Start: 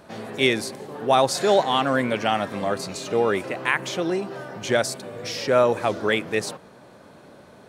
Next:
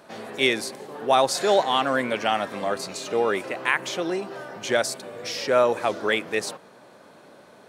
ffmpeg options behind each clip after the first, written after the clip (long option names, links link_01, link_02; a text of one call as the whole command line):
ffmpeg -i in.wav -af "highpass=frequency=320:poles=1" out.wav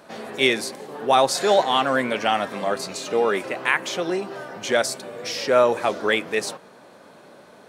ffmpeg -i in.wav -af "flanger=delay=3.7:depth=1.7:regen=-79:speed=1.3:shape=triangular,volume=6.5dB" out.wav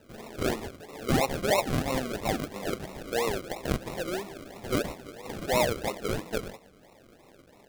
ffmpeg -i in.wav -af "acrusher=samples=39:mix=1:aa=0.000001:lfo=1:lforange=23.4:lforate=3,volume=-8dB" out.wav